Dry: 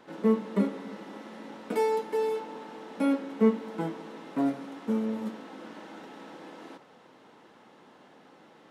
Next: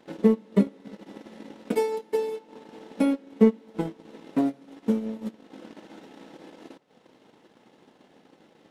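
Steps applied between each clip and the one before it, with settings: peaking EQ 1.2 kHz -7.5 dB 1.3 oct; transient shaper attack +8 dB, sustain -11 dB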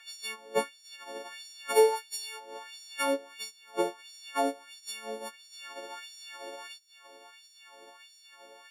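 partials quantised in pitch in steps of 4 st; LFO high-pass sine 1.5 Hz 480–5500 Hz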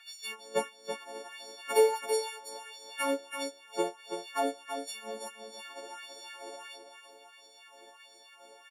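coarse spectral quantiser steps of 15 dB; delay 330 ms -7.5 dB; trim -1.5 dB

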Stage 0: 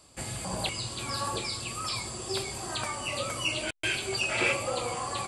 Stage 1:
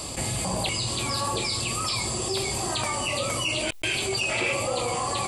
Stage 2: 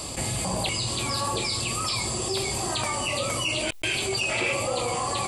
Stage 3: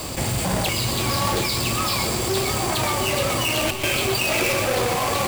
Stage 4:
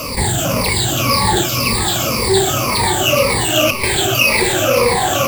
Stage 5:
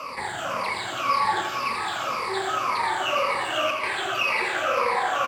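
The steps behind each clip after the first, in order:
peaking EQ 1.5 kHz -7.5 dB 0.41 oct; level flattener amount 70%
no audible change
square wave that keeps the level; two-band feedback delay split 2.1 kHz, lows 710 ms, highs 123 ms, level -7 dB
drifting ripple filter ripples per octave 0.9, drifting -1.9 Hz, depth 18 dB; trim +3.5 dB
band-pass filter 1.3 kHz, Q 1.7; feedback delay 86 ms, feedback 56%, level -8 dB; trim -2.5 dB

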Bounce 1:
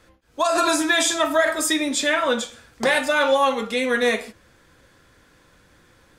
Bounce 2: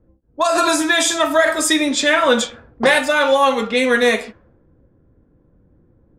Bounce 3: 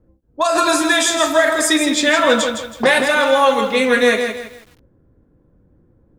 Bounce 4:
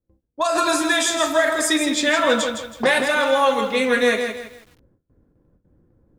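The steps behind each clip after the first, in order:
level-controlled noise filter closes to 330 Hz, open at -18 dBFS; gain riding within 5 dB 0.5 s; trim +5 dB
bit-crushed delay 162 ms, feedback 35%, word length 7-bit, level -7 dB
gate with hold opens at -46 dBFS; trim -4 dB

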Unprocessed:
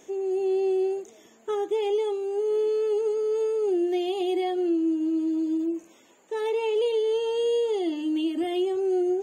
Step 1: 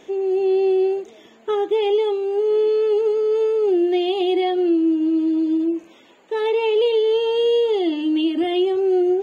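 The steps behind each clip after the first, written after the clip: resonant high shelf 5.2 kHz -10 dB, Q 1.5; trim +6.5 dB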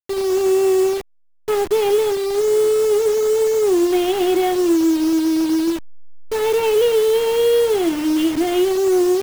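send-on-delta sampling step -25.5 dBFS; trim +2.5 dB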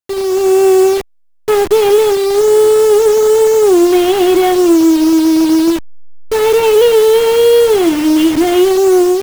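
level rider gain up to 5 dB; in parallel at -4.5 dB: one-sided clip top -18 dBFS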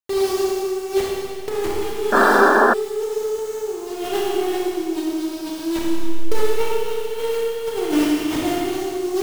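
compressor with a negative ratio -14 dBFS, ratio -0.5; Schroeder reverb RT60 2.1 s, combs from 27 ms, DRR -4 dB; painted sound noise, 2.12–2.74 s, 200–1800 Hz -3 dBFS; trim -11.5 dB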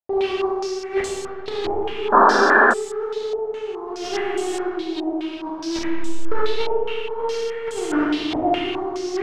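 step-sequenced low-pass 4.8 Hz 730–7700 Hz; trim -3 dB

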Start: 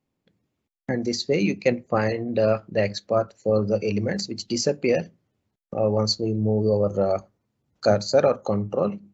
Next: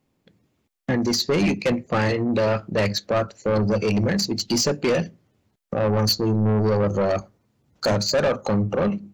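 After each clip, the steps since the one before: dynamic bell 590 Hz, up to -4 dB, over -30 dBFS, Q 0.95; saturation -24.5 dBFS, distortion -9 dB; trim +8.5 dB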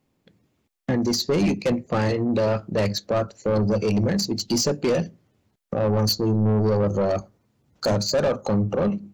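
dynamic bell 2.1 kHz, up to -6 dB, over -39 dBFS, Q 0.76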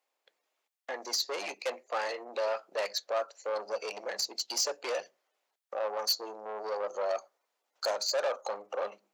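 high-pass 580 Hz 24 dB/octave; trim -5 dB

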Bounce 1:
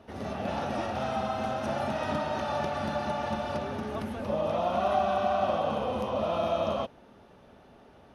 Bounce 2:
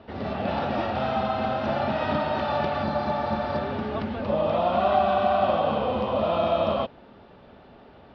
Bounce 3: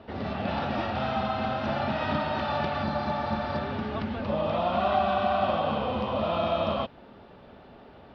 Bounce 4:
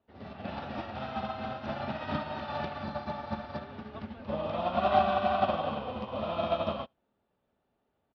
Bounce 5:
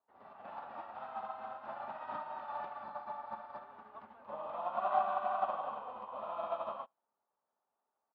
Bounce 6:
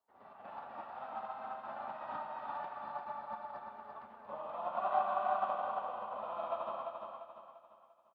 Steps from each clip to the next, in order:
steep low-pass 4.8 kHz 48 dB/octave; spectral replace 2.86–3.64 s, 1.3–3.8 kHz after; trim +5 dB
dynamic bell 500 Hz, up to -5 dB, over -35 dBFS, Q 0.84
delay 73 ms -17 dB; upward expansion 2.5:1, over -42 dBFS; trim +2.5 dB
band-pass filter 1 kHz, Q 2.6; trim -1 dB
feedback delay 345 ms, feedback 41%, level -5 dB; trim -1 dB

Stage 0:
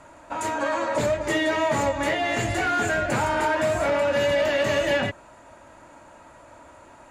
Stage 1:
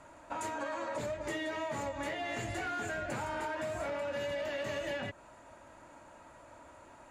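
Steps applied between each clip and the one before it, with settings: compression, threshold -28 dBFS, peak gain reduction 9 dB; trim -6.5 dB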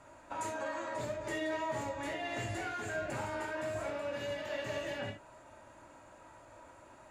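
reverberation, pre-delay 3 ms, DRR 2.5 dB; trim -3 dB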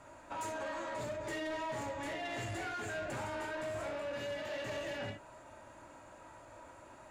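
saturation -36.5 dBFS, distortion -13 dB; trim +1.5 dB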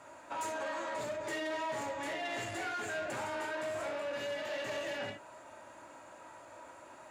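high-pass 310 Hz 6 dB/octave; trim +3 dB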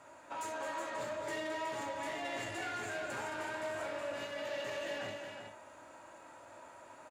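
multi-tap echo 217/369 ms -8.5/-7 dB; trim -3 dB

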